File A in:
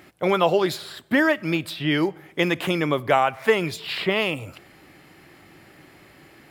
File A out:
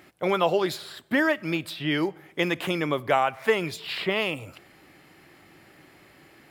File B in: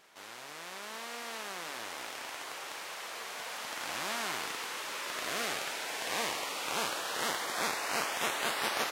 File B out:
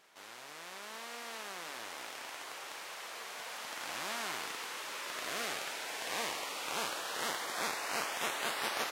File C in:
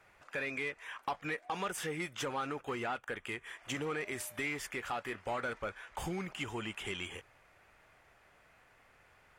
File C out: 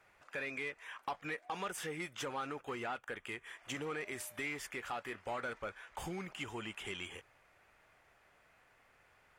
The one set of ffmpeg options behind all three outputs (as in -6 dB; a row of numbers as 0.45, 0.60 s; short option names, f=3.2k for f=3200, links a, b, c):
-af "lowshelf=f=200:g=-3,volume=-3dB"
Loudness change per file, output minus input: -3.5, -3.0, -3.5 LU